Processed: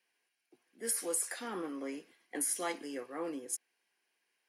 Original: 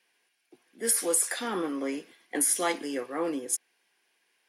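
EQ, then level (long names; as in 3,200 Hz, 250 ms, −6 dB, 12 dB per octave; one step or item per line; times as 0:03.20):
notch filter 3,500 Hz, Q 12
−8.5 dB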